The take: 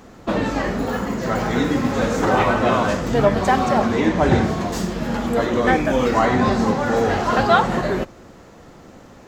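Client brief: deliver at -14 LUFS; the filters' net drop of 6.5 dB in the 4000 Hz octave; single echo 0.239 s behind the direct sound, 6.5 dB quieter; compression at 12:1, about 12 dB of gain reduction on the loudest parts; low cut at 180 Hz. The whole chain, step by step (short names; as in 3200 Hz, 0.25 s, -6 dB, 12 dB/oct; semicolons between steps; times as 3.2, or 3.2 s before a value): HPF 180 Hz; bell 4000 Hz -8.5 dB; compressor 12:1, threshold -24 dBFS; echo 0.239 s -6.5 dB; gain +13.5 dB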